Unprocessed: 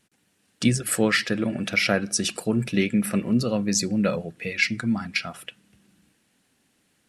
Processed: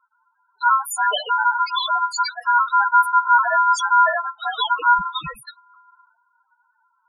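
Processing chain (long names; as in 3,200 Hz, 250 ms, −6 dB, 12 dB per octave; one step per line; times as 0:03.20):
ring modulation 1,200 Hz
sine wavefolder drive 11 dB, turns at −6.5 dBFS
spectral peaks only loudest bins 4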